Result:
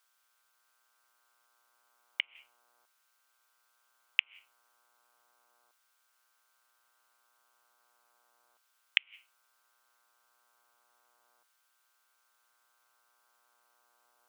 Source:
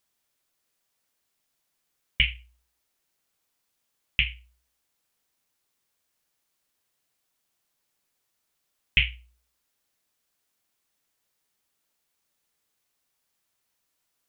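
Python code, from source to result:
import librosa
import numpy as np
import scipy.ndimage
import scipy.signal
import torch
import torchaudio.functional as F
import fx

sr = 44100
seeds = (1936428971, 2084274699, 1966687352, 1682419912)

y = fx.gate_flip(x, sr, shuts_db=-11.0, range_db=-40)
y = fx.dmg_buzz(y, sr, base_hz=120.0, harmonics=13, level_db=-73.0, tilt_db=-2, odd_only=False)
y = fx.filter_lfo_highpass(y, sr, shape='saw_down', hz=0.35, low_hz=760.0, high_hz=1900.0, q=1.0)
y = F.gain(torch.from_numpy(y), 2.0).numpy()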